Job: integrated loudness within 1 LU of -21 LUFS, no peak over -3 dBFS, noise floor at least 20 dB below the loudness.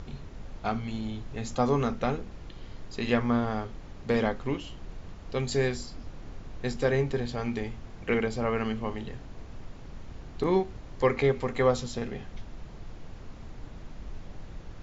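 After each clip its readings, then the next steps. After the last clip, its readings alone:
noise floor -45 dBFS; noise floor target -50 dBFS; loudness -30.0 LUFS; peak -11.5 dBFS; loudness target -21.0 LUFS
-> noise print and reduce 6 dB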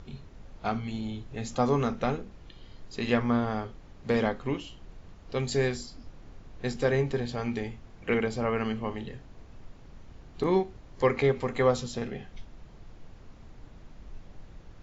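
noise floor -51 dBFS; loudness -30.0 LUFS; peak -11.0 dBFS; loudness target -21.0 LUFS
-> gain +9 dB; limiter -3 dBFS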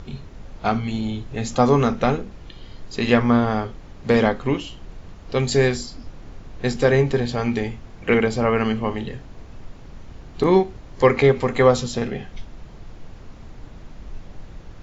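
loudness -21.0 LUFS; peak -3.0 dBFS; noise floor -42 dBFS

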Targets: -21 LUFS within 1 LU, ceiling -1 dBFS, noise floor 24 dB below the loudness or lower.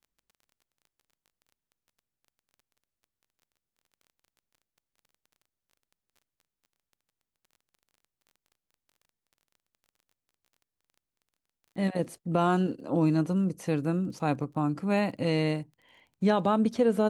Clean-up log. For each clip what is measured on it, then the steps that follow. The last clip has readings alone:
ticks 20/s; loudness -28.0 LUFS; peak -12.5 dBFS; loudness target -21.0 LUFS
-> de-click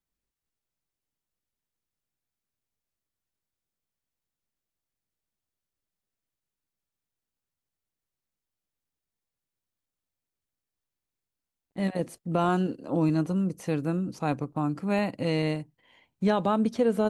ticks 0.058/s; loudness -28.0 LUFS; peak -12.5 dBFS; loudness target -21.0 LUFS
-> gain +7 dB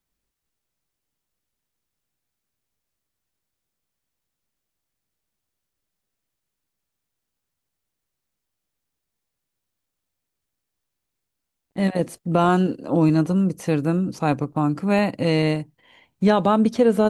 loudness -21.0 LUFS; peak -5.5 dBFS; noise floor -82 dBFS

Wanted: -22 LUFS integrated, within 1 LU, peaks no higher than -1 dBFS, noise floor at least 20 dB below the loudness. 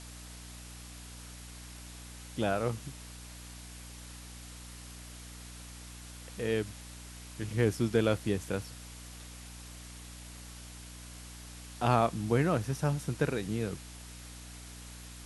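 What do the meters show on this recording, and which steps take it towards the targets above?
hum 60 Hz; harmonics up to 300 Hz; hum level -47 dBFS; noise floor -47 dBFS; noise floor target -52 dBFS; loudness -32.0 LUFS; peak -11.5 dBFS; loudness target -22.0 LUFS
-> notches 60/120/180/240/300 Hz; denoiser 6 dB, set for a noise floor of -47 dBFS; gain +10 dB

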